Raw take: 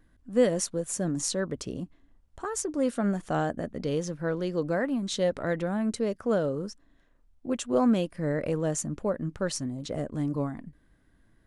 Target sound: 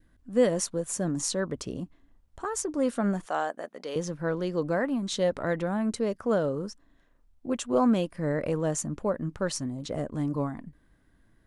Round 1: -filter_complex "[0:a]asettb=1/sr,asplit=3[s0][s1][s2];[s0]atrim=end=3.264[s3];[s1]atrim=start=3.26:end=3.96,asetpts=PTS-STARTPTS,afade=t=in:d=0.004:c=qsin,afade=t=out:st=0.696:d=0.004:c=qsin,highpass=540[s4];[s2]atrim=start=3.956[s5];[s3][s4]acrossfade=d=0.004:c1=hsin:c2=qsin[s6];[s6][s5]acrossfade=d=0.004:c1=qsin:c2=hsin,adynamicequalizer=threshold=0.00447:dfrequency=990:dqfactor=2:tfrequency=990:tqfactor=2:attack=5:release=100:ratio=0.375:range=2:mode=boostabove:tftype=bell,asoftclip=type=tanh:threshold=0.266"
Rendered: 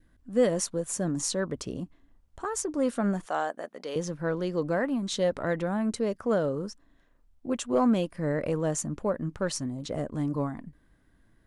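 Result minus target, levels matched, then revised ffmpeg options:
saturation: distortion +11 dB
-filter_complex "[0:a]asettb=1/sr,asplit=3[s0][s1][s2];[s0]atrim=end=3.264[s3];[s1]atrim=start=3.26:end=3.96,asetpts=PTS-STARTPTS,afade=t=in:d=0.004:c=qsin,afade=t=out:st=0.696:d=0.004:c=qsin,highpass=540[s4];[s2]atrim=start=3.956[s5];[s3][s4]acrossfade=d=0.004:c1=hsin:c2=qsin[s6];[s6][s5]acrossfade=d=0.004:c1=qsin:c2=hsin,adynamicequalizer=threshold=0.00447:dfrequency=990:dqfactor=2:tfrequency=990:tqfactor=2:attack=5:release=100:ratio=0.375:range=2:mode=boostabove:tftype=bell,asoftclip=type=tanh:threshold=0.531"

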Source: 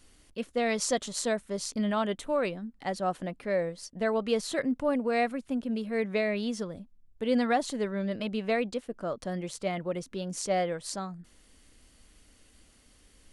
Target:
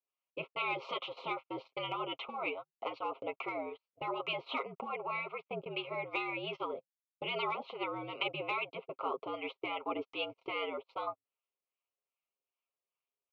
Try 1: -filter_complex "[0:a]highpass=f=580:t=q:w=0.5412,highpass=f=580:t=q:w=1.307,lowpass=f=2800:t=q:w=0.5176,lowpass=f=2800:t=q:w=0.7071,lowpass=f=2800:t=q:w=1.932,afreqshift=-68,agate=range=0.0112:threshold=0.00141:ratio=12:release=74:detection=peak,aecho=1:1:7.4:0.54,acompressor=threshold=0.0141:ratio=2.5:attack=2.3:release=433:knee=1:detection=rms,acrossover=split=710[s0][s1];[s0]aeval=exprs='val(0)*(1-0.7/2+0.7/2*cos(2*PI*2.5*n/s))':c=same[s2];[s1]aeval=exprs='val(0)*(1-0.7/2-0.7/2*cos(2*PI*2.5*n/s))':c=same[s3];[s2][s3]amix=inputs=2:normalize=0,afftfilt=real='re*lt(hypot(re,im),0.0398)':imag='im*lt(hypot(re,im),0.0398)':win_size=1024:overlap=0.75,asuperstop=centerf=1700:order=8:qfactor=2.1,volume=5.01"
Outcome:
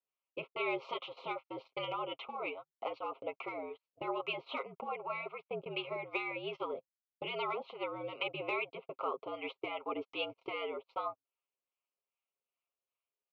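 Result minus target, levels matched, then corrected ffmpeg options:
compression: peak gain reduction +3.5 dB
-filter_complex "[0:a]highpass=f=580:t=q:w=0.5412,highpass=f=580:t=q:w=1.307,lowpass=f=2800:t=q:w=0.5176,lowpass=f=2800:t=q:w=0.7071,lowpass=f=2800:t=q:w=1.932,afreqshift=-68,agate=range=0.0112:threshold=0.00141:ratio=12:release=74:detection=peak,aecho=1:1:7.4:0.54,acompressor=threshold=0.0282:ratio=2.5:attack=2.3:release=433:knee=1:detection=rms,acrossover=split=710[s0][s1];[s0]aeval=exprs='val(0)*(1-0.7/2+0.7/2*cos(2*PI*2.5*n/s))':c=same[s2];[s1]aeval=exprs='val(0)*(1-0.7/2-0.7/2*cos(2*PI*2.5*n/s))':c=same[s3];[s2][s3]amix=inputs=2:normalize=0,afftfilt=real='re*lt(hypot(re,im),0.0398)':imag='im*lt(hypot(re,im),0.0398)':win_size=1024:overlap=0.75,asuperstop=centerf=1700:order=8:qfactor=2.1,volume=5.01"

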